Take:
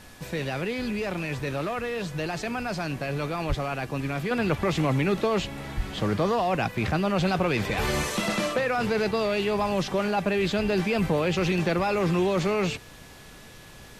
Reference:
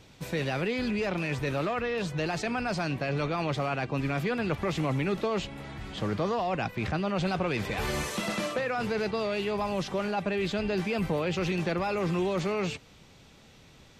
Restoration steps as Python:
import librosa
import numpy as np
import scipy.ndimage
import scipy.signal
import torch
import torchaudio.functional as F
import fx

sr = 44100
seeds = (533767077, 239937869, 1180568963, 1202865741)

y = fx.notch(x, sr, hz=1700.0, q=30.0)
y = fx.highpass(y, sr, hz=140.0, slope=24, at=(3.48, 3.6), fade=0.02)
y = fx.highpass(y, sr, hz=140.0, slope=24, at=(5.76, 5.88), fade=0.02)
y = fx.noise_reduce(y, sr, print_start_s=13.04, print_end_s=13.54, reduce_db=6.0)
y = fx.fix_level(y, sr, at_s=4.31, step_db=-4.5)